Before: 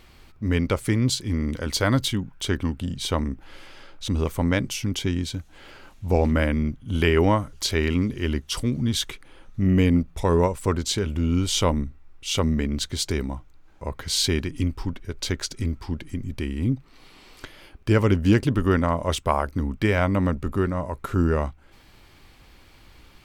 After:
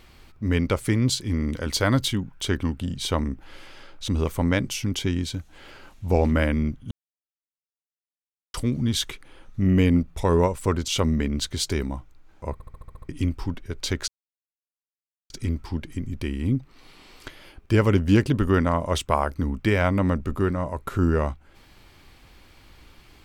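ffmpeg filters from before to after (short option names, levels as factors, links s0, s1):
-filter_complex "[0:a]asplit=13[s0][s1][s2][s3][s4][s5][s6][s7][s8][s9][s10][s11][s12];[s0]atrim=end=6.91,asetpts=PTS-STARTPTS,afade=t=out:st=6.906:d=0.004:c=hsin[s13];[s1]atrim=start=6.91:end=8.54,asetpts=PTS-STARTPTS,volume=0[s14];[s2]atrim=start=8.54:end=10.882,asetpts=PTS-STARTPTS,afade=t=in:d=0.004:c=hsin[s15];[s3]atrim=start=12.268:end=13.992[s16];[s4]atrim=start=13.918:end=13.992[s17];[s5]atrim=start=13.918:end=13.992[s18];[s6]atrim=start=13.918:end=13.992[s19];[s7]atrim=start=13.918:end=13.992[s20];[s8]atrim=start=13.918:end=13.992[s21];[s9]atrim=start=13.918:end=13.992[s22];[s10]atrim=start=13.918:end=13.992[s23];[s11]atrim=start=14.478:end=15.47,asetpts=PTS-STARTPTS,afade=t=out:st=0.988:d=0.004:c=hsin,apad=pad_dur=1.22[s24];[s12]atrim=start=15.47,asetpts=PTS-STARTPTS,afade=t=in:d=0.004:c=hsin[s25];[s13][s14][s15]concat=n=3:v=0:a=1[s26];[s26][s16]acrossfade=d=0.004:c1=hsin:c2=hsin[s27];[s27][s17]acrossfade=d=0.004:c1=hsin:c2=hsin[s28];[s28][s18]acrossfade=d=0.004:c1=hsin:c2=hsin[s29];[s29][s19]acrossfade=d=0.004:c1=hsin:c2=hsin[s30];[s30][s20]acrossfade=d=0.004:c1=hsin:c2=hsin[s31];[s31][s21]acrossfade=d=0.004:c1=hsin:c2=hsin[s32];[s32][s22]acrossfade=d=0.004:c1=hsin:c2=hsin[s33];[s33][s23]acrossfade=d=0.004:c1=hsin:c2=hsin[s34];[s24][s25]concat=n=2:v=0:a=1[s35];[s34][s35]acrossfade=d=0.004:c1=hsin:c2=hsin"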